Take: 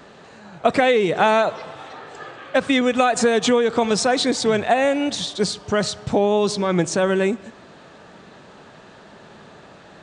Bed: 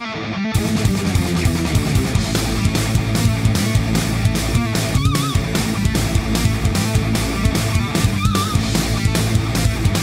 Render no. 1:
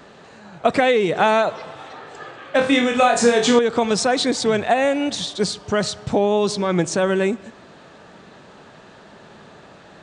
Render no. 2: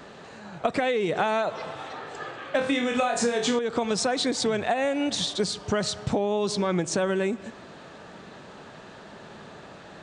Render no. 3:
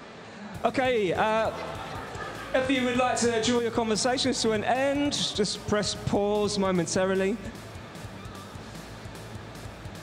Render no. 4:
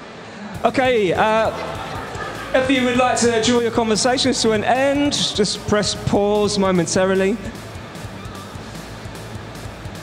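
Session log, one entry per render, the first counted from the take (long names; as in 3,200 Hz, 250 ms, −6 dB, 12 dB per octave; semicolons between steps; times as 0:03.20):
0:02.56–0:03.59: flutter between parallel walls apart 4.3 metres, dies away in 0.38 s
downward compressor 6 to 1, threshold −22 dBFS, peak gain reduction 12 dB
mix in bed −25.5 dB
level +8.5 dB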